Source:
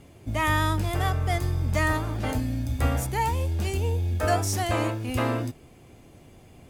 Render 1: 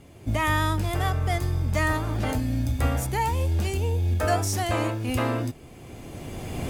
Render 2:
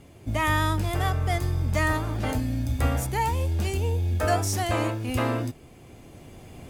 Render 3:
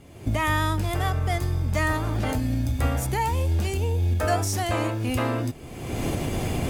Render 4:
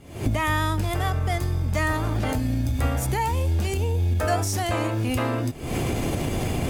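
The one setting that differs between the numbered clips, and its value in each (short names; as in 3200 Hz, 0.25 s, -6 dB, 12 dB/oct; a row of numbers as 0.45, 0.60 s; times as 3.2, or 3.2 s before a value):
recorder AGC, rising by: 15, 5.2, 37, 91 dB/s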